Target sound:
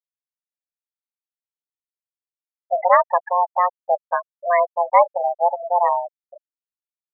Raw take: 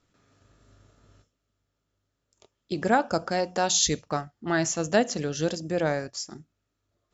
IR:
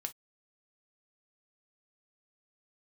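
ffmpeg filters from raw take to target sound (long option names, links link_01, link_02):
-af "aemphasis=mode=reproduction:type=riaa,highpass=frequency=230:width_type=q:width=0.5412,highpass=frequency=230:width_type=q:width=1.307,lowpass=frequency=3000:width_type=q:width=0.5176,lowpass=frequency=3000:width_type=q:width=0.7071,lowpass=frequency=3000:width_type=q:width=1.932,afreqshift=350,afftfilt=real='re*gte(hypot(re,im),0.141)':imag='im*gte(hypot(re,im),0.141)':win_size=1024:overlap=0.75,volume=6dB"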